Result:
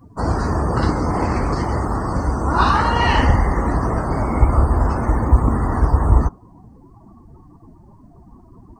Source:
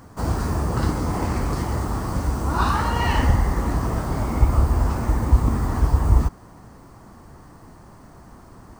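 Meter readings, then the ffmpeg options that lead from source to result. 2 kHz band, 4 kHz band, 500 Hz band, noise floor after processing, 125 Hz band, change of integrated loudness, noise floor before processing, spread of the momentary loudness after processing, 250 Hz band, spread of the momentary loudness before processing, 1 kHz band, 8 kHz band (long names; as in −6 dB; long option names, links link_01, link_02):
+6.0 dB, +5.0 dB, +6.0 dB, −47 dBFS, +2.5 dB, +3.5 dB, −46 dBFS, 6 LU, +4.5 dB, 6 LU, +6.5 dB, −2.5 dB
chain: -filter_complex "[0:a]bass=frequency=250:gain=-4,treble=frequency=4000:gain=3,afftdn=noise_reduction=26:noise_floor=-40,acrossover=split=6100[link_01][link_02];[link_02]acompressor=threshold=-56dB:ratio=4:attack=1:release=60[link_03];[link_01][link_03]amix=inputs=2:normalize=0,volume=6.5dB"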